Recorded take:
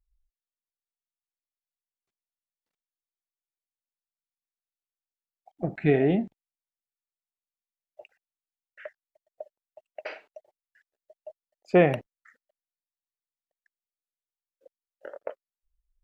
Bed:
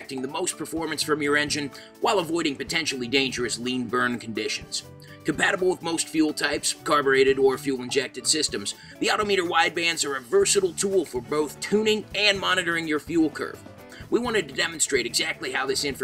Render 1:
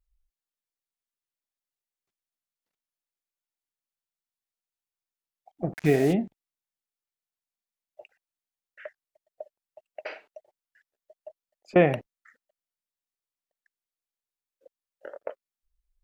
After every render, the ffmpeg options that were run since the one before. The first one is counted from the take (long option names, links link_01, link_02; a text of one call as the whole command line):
ffmpeg -i in.wav -filter_complex "[0:a]asplit=3[link_01][link_02][link_03];[link_01]afade=type=out:start_time=5.72:duration=0.02[link_04];[link_02]acrusher=bits=5:mix=0:aa=0.5,afade=type=in:start_time=5.72:duration=0.02,afade=type=out:start_time=6.12:duration=0.02[link_05];[link_03]afade=type=in:start_time=6.12:duration=0.02[link_06];[link_04][link_05][link_06]amix=inputs=3:normalize=0,asettb=1/sr,asplit=3[link_07][link_08][link_09];[link_07]atrim=end=11.284[link_10];[link_08]atrim=start=11.28:end=11.76,asetpts=PTS-STARTPTS,afade=type=in:duration=0.004:curve=qsin,afade=type=out:start_time=0.476:duration=0.004:curve=qsin,acompressor=threshold=-43dB:ratio=6:attack=3.2:release=140:knee=1:detection=peak[link_11];[link_09]atrim=start=11.756[link_12];[link_10][link_11]acrossfade=duration=0.004:curve1=hsin:curve2=qsin[link_13];[link_13][link_12]acrossfade=duration=0.004:curve1=qsin:curve2=hsin" out.wav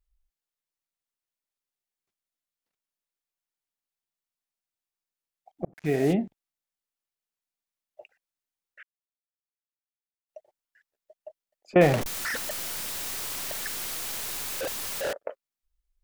ffmpeg -i in.wav -filter_complex "[0:a]asettb=1/sr,asplit=3[link_01][link_02][link_03];[link_01]atrim=end=11.814[link_04];[link_02]atrim=start=11.81:end=15.13,asetpts=PTS-STARTPTS,afade=type=in:duration=0.004:curve=qsin,afade=type=out:start_time=3.316:duration=0.004:curve=qsin,aeval=exprs='val(0)+0.5*0.0631*sgn(val(0))':channel_layout=same[link_05];[link_03]atrim=start=15.126[link_06];[link_04][link_05]acrossfade=duration=0.004:curve1=hsin:curve2=qsin[link_07];[link_07][link_06]acrossfade=duration=0.004:curve1=qsin:curve2=hsin,asplit=4[link_08][link_09][link_10][link_11];[link_08]atrim=end=5.65,asetpts=PTS-STARTPTS,afade=type=out:start_time=5.646:duration=0.004:curve=hsin[link_12];[link_09]atrim=start=5.65:end=8.83,asetpts=PTS-STARTPTS,afade=type=in:duration=0.45,afade=type=out:start_time=3.176:duration=0.004:curve=hsin[link_13];[link_10]atrim=start=8.83:end=10.29,asetpts=PTS-STARTPTS,volume=0[link_14];[link_11]atrim=start=10.29,asetpts=PTS-STARTPTS,afade=type=in:duration=0.004:curve=hsin[link_15];[link_12][link_13][link_14][link_15]concat=n=4:v=0:a=1" out.wav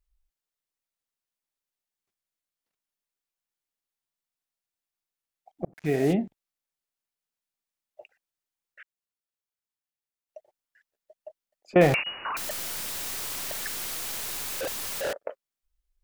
ffmpeg -i in.wav -filter_complex "[0:a]asettb=1/sr,asplit=3[link_01][link_02][link_03];[link_01]atrim=end=11.944[link_04];[link_02]atrim=start=11.94:end=12.37,asetpts=PTS-STARTPTS,afade=type=in:duration=0.004:curve=qsin,afade=type=out:start_time=0.426:duration=0.004:curve=qsin,lowpass=frequency=2500:width_type=q:width=0.5098,lowpass=frequency=2500:width_type=q:width=0.6013,lowpass=frequency=2500:width_type=q:width=0.9,lowpass=frequency=2500:width_type=q:width=2.563,afreqshift=-2900[link_05];[link_03]atrim=start=12.366[link_06];[link_04][link_05]acrossfade=duration=0.004:curve1=hsin:curve2=qsin[link_07];[link_07][link_06]acrossfade=duration=0.004:curve1=qsin:curve2=hsin" out.wav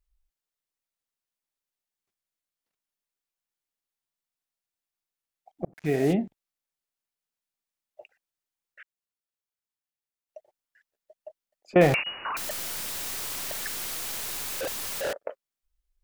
ffmpeg -i in.wav -af anull out.wav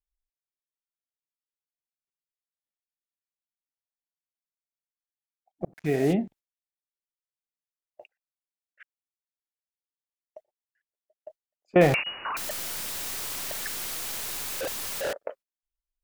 ffmpeg -i in.wav -af "agate=range=-15dB:threshold=-48dB:ratio=16:detection=peak" out.wav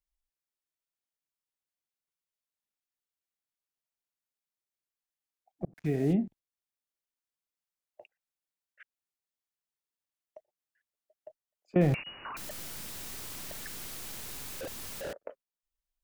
ffmpeg -i in.wav -filter_complex "[0:a]acrossover=split=310[link_01][link_02];[link_02]acompressor=threshold=-57dB:ratio=1.5[link_03];[link_01][link_03]amix=inputs=2:normalize=0" out.wav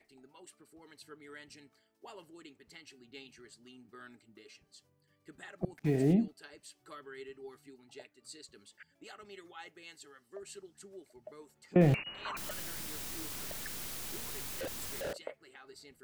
ffmpeg -i in.wav -i bed.wav -filter_complex "[1:a]volume=-28.5dB[link_01];[0:a][link_01]amix=inputs=2:normalize=0" out.wav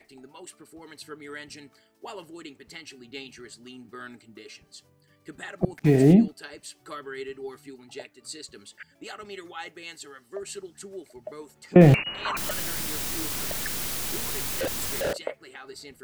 ffmpeg -i in.wav -af "volume=11dB" out.wav